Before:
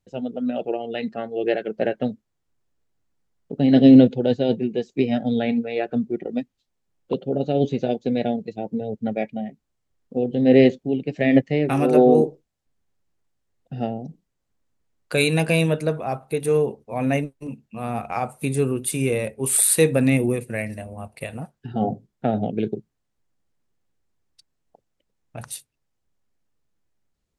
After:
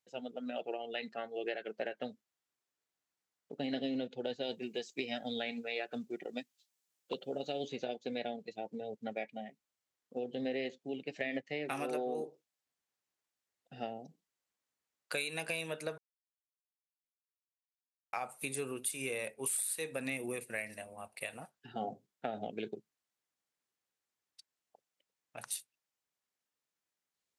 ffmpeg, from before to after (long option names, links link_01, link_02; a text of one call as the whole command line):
ffmpeg -i in.wav -filter_complex "[0:a]asettb=1/sr,asplit=3[link_01][link_02][link_03];[link_01]atrim=end=4.434[link_04];[link_02]atrim=start=4.43:end=7.68,asetpts=PTS-STARTPTS,afade=type=in:duration=0.004:curve=qsin,afade=type=out:start_time=3.246:duration=0.004:curve=qsin,highshelf=frequency=4200:gain=11[link_05];[link_03]atrim=start=7.676[link_06];[link_04][link_05]acrossfade=duration=0.004:curve1=hsin:curve2=qsin[link_07];[link_07][link_06]acrossfade=duration=0.004:curve1=qsin:curve2=hsin,asplit=3[link_08][link_09][link_10];[link_08]atrim=end=15.98,asetpts=PTS-STARTPTS,afade=type=out:start_time=15.976:duration=0.004:curve=hsin[link_11];[link_09]atrim=start=15.98:end=18.13,asetpts=PTS-STARTPTS,volume=0[link_12];[link_10]atrim=start=18.13,asetpts=PTS-STARTPTS,afade=type=in:duration=0.004:curve=hsin[link_13];[link_11][link_12][link_13]concat=n=3:v=0:a=1,highpass=frequency=1300:poles=1,acompressor=threshold=-30dB:ratio=10,volume=-3dB" out.wav